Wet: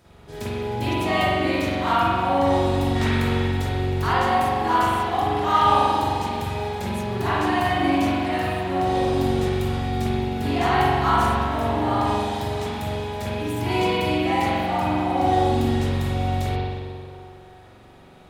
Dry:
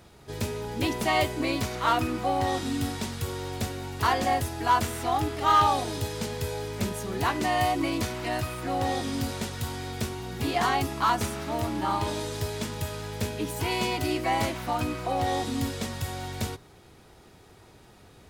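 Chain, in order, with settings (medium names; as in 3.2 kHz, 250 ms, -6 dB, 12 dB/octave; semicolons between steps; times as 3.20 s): 2.95–3.43 s: peaking EQ 1.6 kHz +14 dB -> +3 dB 2.5 oct; band-passed feedback delay 315 ms, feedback 57%, band-pass 730 Hz, level -10 dB; spring tank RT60 1.8 s, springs 43 ms, chirp 20 ms, DRR -9 dB; trim -4.5 dB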